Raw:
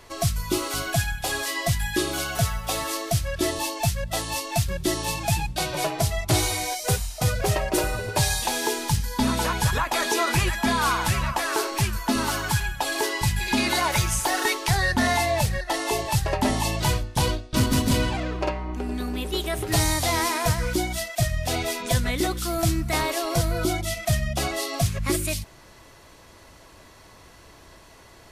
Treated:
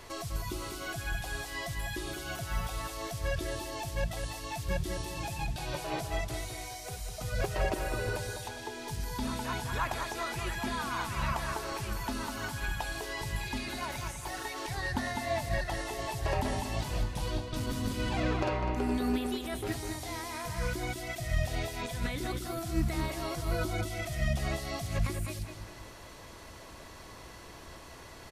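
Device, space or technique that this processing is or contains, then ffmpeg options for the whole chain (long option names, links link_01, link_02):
de-esser from a sidechain: -filter_complex "[0:a]asplit=2[link_01][link_02];[link_02]highpass=4500,apad=whole_len=1248607[link_03];[link_01][link_03]sidechaincompress=threshold=-43dB:ratio=8:attack=0.74:release=70,asettb=1/sr,asplit=3[link_04][link_05][link_06];[link_04]atrim=end=8.484[link_07];[link_05]atrim=start=8.48:end=8.88,asetpts=PTS-STARTPTS,afade=type=in:duration=0.004:curve=qsin,afade=type=out:start_time=0.396:duration=0.004:curve=qsin,highshelf=frequency=7400:gain=-12[link_08];[link_06]atrim=start=8.876[link_09];[link_07][link_08]acrossfade=duration=0.004:curve1=hsin:curve2=qsin[link_10];[link_10][link_09]acrossfade=duration=0.004:curve1=qsin:curve2=hsin,asplit=2[link_11][link_12];[link_12]adelay=202,lowpass=frequency=4100:poles=1,volume=-6dB,asplit=2[link_13][link_14];[link_14]adelay=202,lowpass=frequency=4100:poles=1,volume=0.39,asplit=2[link_15][link_16];[link_16]adelay=202,lowpass=frequency=4100:poles=1,volume=0.39,asplit=2[link_17][link_18];[link_18]adelay=202,lowpass=frequency=4100:poles=1,volume=0.39,asplit=2[link_19][link_20];[link_20]adelay=202,lowpass=frequency=4100:poles=1,volume=0.39[link_21];[link_11][link_13][link_15][link_17][link_19][link_21]amix=inputs=6:normalize=0"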